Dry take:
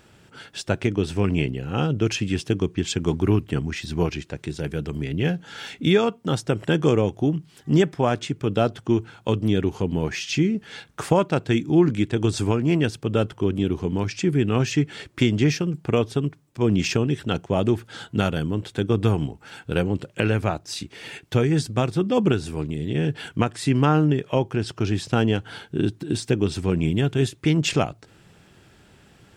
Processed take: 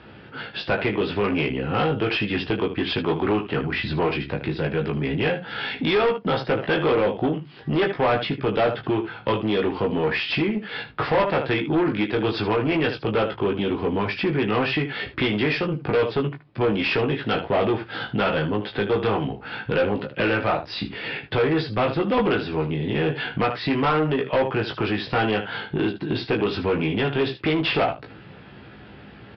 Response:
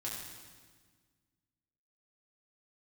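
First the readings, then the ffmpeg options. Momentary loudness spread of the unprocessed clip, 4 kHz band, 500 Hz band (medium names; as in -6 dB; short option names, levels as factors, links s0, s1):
8 LU, +2.5 dB, +2.0 dB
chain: -filter_complex "[0:a]asplit=2[s0][s1];[s1]adelay=15,volume=0.398[s2];[s0][s2]amix=inputs=2:normalize=0,aecho=1:1:19|77:0.596|0.224,acrossover=split=400|1600[s3][s4][s5];[s3]acompressor=threshold=0.0282:ratio=10[s6];[s6][s4][s5]amix=inputs=3:normalize=0,highpass=70,aresample=11025,asoftclip=type=tanh:threshold=0.0631,aresample=44100,lowpass=3000,volume=2.51"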